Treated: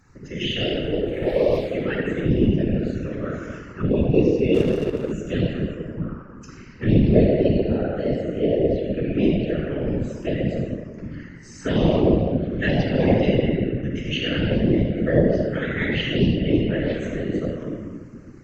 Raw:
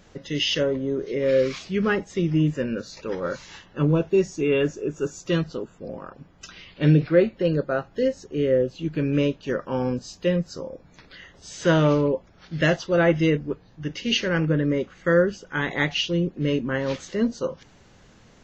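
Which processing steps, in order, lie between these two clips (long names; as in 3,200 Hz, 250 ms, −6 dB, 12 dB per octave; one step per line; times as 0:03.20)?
0:00.74–0:01.57: lower of the sound and its delayed copy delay 2.2 ms
convolution reverb RT60 2.1 s, pre-delay 41 ms, DRR −1 dB
phaser swept by the level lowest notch 550 Hz, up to 1,400 Hz, full sweep at −10 dBFS
random phases in short frames
0:04.54–0:05.12: slack as between gear wheels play −23 dBFS
level −4.5 dB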